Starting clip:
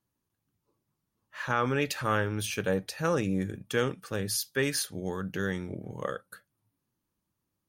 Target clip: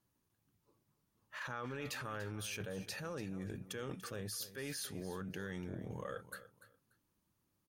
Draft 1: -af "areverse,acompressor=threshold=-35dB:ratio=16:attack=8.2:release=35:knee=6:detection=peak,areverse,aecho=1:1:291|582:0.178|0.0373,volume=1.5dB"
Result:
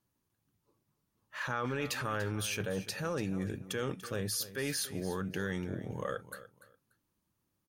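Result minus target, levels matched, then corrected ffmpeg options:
compressor: peak gain reduction -8.5 dB
-af "areverse,acompressor=threshold=-44dB:ratio=16:attack=8.2:release=35:knee=6:detection=peak,areverse,aecho=1:1:291|582:0.178|0.0373,volume=1.5dB"

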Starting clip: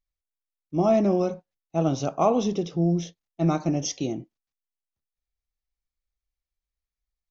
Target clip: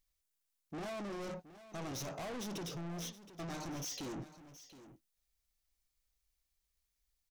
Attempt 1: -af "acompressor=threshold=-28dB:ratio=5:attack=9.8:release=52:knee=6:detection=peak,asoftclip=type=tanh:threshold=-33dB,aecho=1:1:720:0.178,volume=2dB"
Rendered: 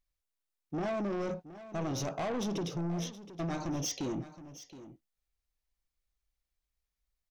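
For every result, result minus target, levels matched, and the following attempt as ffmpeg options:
8000 Hz band -3.0 dB; soft clip: distortion -4 dB
-af "acompressor=threshold=-28dB:ratio=5:attack=9.8:release=52:knee=6:detection=peak,highshelf=f=3.3k:g=9,asoftclip=type=tanh:threshold=-33dB,aecho=1:1:720:0.178,volume=2dB"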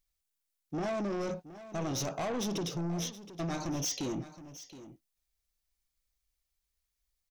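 soft clip: distortion -4 dB
-af "acompressor=threshold=-28dB:ratio=5:attack=9.8:release=52:knee=6:detection=peak,highshelf=f=3.3k:g=9,asoftclip=type=tanh:threshold=-43dB,aecho=1:1:720:0.178,volume=2dB"

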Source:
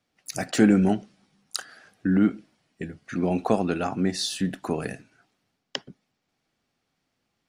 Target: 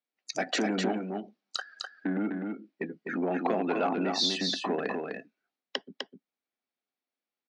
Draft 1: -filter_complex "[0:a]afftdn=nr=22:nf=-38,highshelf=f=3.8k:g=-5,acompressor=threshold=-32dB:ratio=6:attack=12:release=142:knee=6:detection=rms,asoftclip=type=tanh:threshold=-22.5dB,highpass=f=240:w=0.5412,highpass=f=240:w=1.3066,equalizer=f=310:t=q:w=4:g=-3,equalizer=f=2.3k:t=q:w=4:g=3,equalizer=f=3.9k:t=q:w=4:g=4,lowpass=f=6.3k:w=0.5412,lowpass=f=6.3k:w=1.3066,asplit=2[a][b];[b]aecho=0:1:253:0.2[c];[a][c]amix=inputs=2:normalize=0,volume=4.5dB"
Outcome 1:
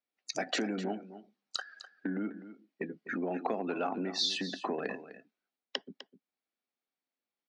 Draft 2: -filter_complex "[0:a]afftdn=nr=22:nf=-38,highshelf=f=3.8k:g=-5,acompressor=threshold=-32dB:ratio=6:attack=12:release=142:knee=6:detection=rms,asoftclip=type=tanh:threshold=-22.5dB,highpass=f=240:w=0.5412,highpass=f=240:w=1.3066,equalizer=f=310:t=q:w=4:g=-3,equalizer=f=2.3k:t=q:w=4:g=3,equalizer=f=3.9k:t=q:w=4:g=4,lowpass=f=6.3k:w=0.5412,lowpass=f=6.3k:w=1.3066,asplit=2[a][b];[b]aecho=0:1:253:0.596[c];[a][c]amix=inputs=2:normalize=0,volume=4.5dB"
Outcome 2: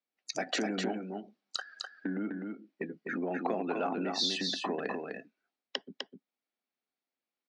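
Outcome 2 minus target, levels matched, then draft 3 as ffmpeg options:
compressor: peak gain reduction +6 dB
-filter_complex "[0:a]afftdn=nr=22:nf=-38,highshelf=f=3.8k:g=-5,acompressor=threshold=-24.5dB:ratio=6:attack=12:release=142:knee=6:detection=rms,asoftclip=type=tanh:threshold=-22.5dB,highpass=f=240:w=0.5412,highpass=f=240:w=1.3066,equalizer=f=310:t=q:w=4:g=-3,equalizer=f=2.3k:t=q:w=4:g=3,equalizer=f=3.9k:t=q:w=4:g=4,lowpass=f=6.3k:w=0.5412,lowpass=f=6.3k:w=1.3066,asplit=2[a][b];[b]aecho=0:1:253:0.596[c];[a][c]amix=inputs=2:normalize=0,volume=4.5dB"

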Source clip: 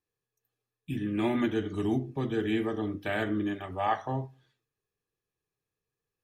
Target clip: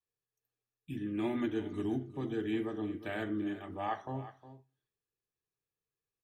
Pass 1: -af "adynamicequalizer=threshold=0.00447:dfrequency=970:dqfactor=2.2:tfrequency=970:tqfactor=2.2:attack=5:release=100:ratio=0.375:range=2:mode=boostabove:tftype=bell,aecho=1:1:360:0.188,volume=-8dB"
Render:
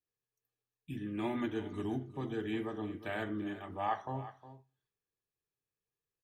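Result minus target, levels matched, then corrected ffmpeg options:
1000 Hz band +4.0 dB
-af "adynamicequalizer=threshold=0.00447:dfrequency=310:dqfactor=2.2:tfrequency=310:tqfactor=2.2:attack=5:release=100:ratio=0.375:range=2:mode=boostabove:tftype=bell,aecho=1:1:360:0.188,volume=-8dB"

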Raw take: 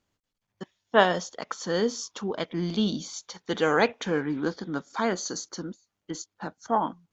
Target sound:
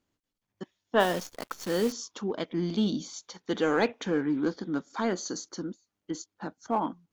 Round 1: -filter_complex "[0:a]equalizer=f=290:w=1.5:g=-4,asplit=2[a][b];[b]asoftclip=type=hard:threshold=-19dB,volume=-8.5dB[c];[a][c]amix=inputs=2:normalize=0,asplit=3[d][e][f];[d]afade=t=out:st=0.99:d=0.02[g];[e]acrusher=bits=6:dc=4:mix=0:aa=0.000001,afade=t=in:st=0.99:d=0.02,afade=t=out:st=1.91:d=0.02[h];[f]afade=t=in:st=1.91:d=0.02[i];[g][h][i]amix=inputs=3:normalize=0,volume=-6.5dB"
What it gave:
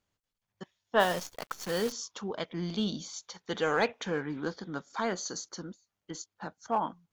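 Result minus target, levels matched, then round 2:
250 Hz band -4.0 dB
-filter_complex "[0:a]equalizer=f=290:w=1.5:g=6,asplit=2[a][b];[b]asoftclip=type=hard:threshold=-19dB,volume=-8.5dB[c];[a][c]amix=inputs=2:normalize=0,asplit=3[d][e][f];[d]afade=t=out:st=0.99:d=0.02[g];[e]acrusher=bits=6:dc=4:mix=0:aa=0.000001,afade=t=in:st=0.99:d=0.02,afade=t=out:st=1.91:d=0.02[h];[f]afade=t=in:st=1.91:d=0.02[i];[g][h][i]amix=inputs=3:normalize=0,volume=-6.5dB"

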